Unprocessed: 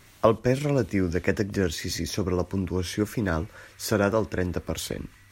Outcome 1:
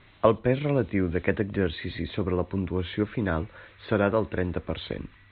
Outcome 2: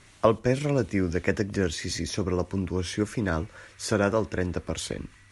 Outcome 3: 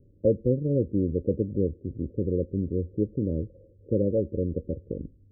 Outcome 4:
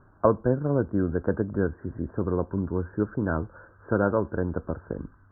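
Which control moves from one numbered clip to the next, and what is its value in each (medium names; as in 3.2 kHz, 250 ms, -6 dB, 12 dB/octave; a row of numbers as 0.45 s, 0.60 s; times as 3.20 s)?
Chebyshev low-pass, frequency: 4 kHz, 11 kHz, 560 Hz, 1.6 kHz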